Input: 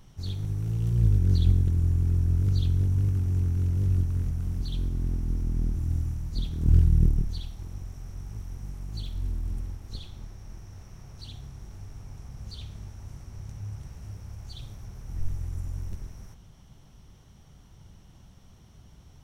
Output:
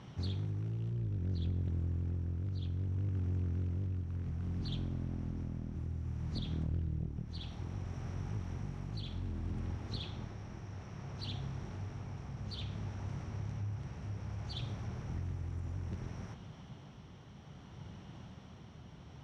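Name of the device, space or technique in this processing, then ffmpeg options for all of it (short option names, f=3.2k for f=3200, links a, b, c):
AM radio: -af "highpass=110,lowpass=3.4k,acompressor=threshold=-39dB:ratio=5,asoftclip=type=tanh:threshold=-34dB,tremolo=f=0.61:d=0.28,volume=7dB"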